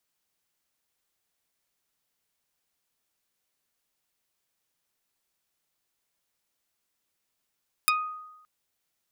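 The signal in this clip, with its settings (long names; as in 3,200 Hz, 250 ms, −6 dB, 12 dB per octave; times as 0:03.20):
Karplus-Strong string D#6, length 0.57 s, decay 0.98 s, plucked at 0.32, dark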